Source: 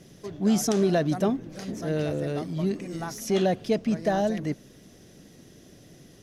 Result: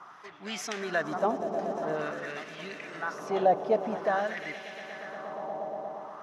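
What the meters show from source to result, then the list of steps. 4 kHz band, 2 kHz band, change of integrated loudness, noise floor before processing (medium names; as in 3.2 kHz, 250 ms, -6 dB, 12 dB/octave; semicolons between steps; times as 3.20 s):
-4.5 dB, +4.5 dB, -5.0 dB, -53 dBFS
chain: echo with a slow build-up 118 ms, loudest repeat 5, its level -15.5 dB; band noise 660–1300 Hz -52 dBFS; LFO band-pass sine 0.48 Hz 740–2300 Hz; trim +7.5 dB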